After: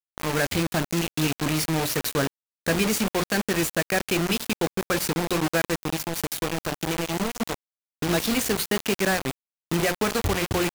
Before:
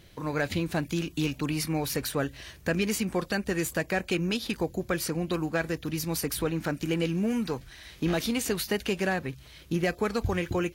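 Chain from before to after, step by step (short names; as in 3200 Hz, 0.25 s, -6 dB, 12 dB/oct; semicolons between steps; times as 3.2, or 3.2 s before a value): notches 60/120/180/240/300/360/420/480/540/600 Hz; 5.88–8.09 compressor 10:1, threshold -29 dBFS, peak gain reduction 7 dB; bit-crush 5-bit; gain +4 dB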